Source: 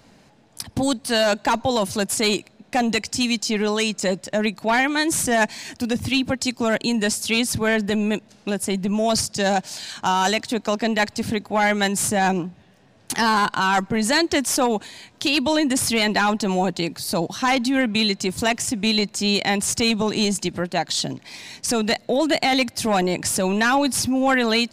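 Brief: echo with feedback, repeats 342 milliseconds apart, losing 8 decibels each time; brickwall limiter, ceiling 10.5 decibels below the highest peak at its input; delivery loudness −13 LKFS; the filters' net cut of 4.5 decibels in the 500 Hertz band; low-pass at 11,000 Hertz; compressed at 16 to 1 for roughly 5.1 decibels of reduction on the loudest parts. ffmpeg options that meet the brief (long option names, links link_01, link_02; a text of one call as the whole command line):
ffmpeg -i in.wav -af "lowpass=11000,equalizer=frequency=500:width_type=o:gain=-6,acompressor=threshold=-21dB:ratio=16,alimiter=limit=-22dB:level=0:latency=1,aecho=1:1:342|684|1026|1368|1710:0.398|0.159|0.0637|0.0255|0.0102,volume=16dB" out.wav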